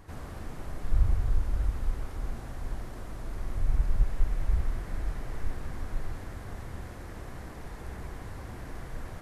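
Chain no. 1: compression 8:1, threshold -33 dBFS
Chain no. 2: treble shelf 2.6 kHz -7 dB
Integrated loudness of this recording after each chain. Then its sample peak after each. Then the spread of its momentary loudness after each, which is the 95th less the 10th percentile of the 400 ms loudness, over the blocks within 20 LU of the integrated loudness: -44.0 LUFS, -36.0 LUFS; -26.0 dBFS, -12.0 dBFS; 2 LU, 13 LU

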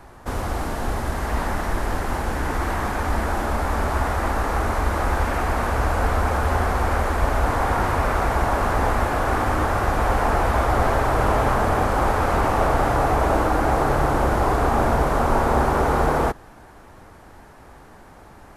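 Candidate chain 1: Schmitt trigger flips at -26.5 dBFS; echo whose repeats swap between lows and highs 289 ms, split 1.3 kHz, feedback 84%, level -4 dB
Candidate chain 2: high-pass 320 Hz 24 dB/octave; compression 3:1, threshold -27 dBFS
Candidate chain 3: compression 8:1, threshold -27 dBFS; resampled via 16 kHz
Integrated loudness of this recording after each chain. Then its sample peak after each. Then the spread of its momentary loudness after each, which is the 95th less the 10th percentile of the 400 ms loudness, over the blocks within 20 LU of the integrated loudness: -20.5 LUFS, -29.0 LUFS, -32.0 LUFS; -7.0 dBFS, -15.5 dBFS, -18.0 dBFS; 5 LU, 15 LU, 13 LU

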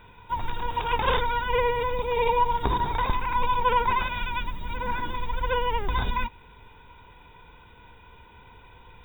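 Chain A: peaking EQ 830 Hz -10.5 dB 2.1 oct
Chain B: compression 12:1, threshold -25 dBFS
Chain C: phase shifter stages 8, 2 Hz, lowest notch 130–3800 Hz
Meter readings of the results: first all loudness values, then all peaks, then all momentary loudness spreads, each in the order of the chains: -33.0 LUFS, -31.5 LUFS, -29.0 LUFS; -13.0 dBFS, -13.0 dBFS, -8.5 dBFS; 7 LU, 21 LU, 9 LU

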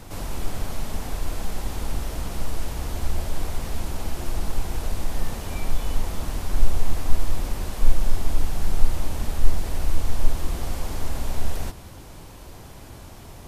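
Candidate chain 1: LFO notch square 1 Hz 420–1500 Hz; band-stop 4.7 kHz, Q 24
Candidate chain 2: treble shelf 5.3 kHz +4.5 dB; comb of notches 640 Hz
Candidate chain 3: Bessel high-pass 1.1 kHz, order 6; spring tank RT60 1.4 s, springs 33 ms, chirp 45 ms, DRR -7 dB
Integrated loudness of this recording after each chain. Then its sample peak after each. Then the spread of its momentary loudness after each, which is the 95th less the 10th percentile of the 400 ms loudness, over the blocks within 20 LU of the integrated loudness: -31.5 LUFS, -34.0 LUFS, -35.5 LUFS; -1.5 dBFS, -12.0 dBFS, -23.0 dBFS; 14 LU, 10 LU, 6 LU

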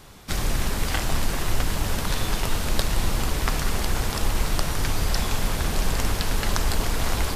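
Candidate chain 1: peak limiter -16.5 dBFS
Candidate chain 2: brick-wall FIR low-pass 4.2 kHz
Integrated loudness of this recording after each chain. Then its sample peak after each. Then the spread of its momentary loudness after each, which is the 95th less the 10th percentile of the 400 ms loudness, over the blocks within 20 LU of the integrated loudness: -29.0 LUFS, -27.5 LUFS; -16.5 dBFS, -5.5 dBFS; 1 LU, 1 LU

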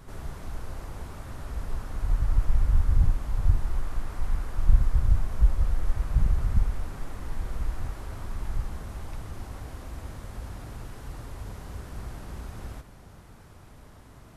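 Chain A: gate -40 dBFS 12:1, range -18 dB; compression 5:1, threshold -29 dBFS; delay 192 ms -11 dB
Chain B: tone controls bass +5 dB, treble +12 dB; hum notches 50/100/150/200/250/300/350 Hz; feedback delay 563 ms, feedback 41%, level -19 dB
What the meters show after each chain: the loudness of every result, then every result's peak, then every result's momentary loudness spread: -39.5 LUFS, -27.5 LUFS; -20.0 dBFS, -1.5 dBFS; 4 LU, 16 LU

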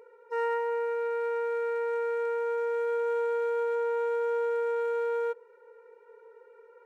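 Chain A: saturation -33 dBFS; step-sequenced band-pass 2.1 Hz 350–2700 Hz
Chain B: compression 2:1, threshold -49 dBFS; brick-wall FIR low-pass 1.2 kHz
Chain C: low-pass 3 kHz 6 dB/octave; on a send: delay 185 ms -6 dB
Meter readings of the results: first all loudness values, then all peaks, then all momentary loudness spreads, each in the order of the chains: -43.0 LUFS, -42.0 LUFS, -32.0 LUFS; -32.5 dBFS, -34.5 dBFS, -20.5 dBFS; 13 LU, 14 LU, 5 LU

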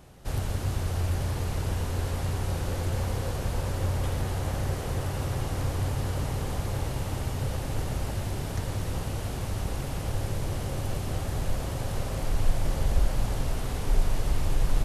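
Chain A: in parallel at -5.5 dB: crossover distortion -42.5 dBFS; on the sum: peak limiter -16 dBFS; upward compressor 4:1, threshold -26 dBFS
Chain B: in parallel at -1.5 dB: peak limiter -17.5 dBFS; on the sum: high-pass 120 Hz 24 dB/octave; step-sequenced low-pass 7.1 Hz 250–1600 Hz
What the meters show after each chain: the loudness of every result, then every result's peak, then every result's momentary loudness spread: -28.5 LUFS, -27.5 LUFS; -15.0 dBFS, -12.5 dBFS; 3 LU, 3 LU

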